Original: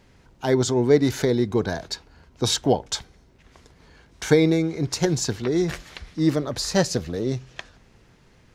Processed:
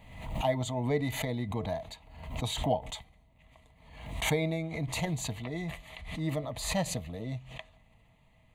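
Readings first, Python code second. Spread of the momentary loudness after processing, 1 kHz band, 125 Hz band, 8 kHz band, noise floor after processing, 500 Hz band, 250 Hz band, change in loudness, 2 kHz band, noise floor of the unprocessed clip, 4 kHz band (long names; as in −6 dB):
13 LU, −4.5 dB, −7.5 dB, −10.0 dB, −63 dBFS, −12.0 dB, −12.5 dB, −10.5 dB, −6.0 dB, −56 dBFS, −9.5 dB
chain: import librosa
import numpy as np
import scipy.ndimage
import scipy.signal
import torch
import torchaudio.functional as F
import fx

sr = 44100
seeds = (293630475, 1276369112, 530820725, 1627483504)

y = fx.fixed_phaser(x, sr, hz=1500.0, stages=6)
y = fx.small_body(y, sr, hz=(440.0, 640.0, 2000.0), ring_ms=100, db=12)
y = fx.pre_swell(y, sr, db_per_s=64.0)
y = F.gain(torch.from_numpy(y), -7.0).numpy()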